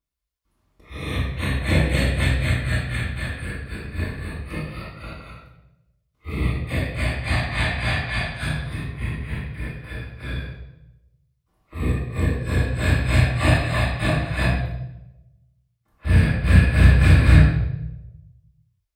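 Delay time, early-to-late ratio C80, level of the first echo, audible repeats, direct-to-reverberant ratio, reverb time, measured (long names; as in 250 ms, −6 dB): no echo audible, 5.0 dB, no echo audible, no echo audible, −10.0 dB, 0.90 s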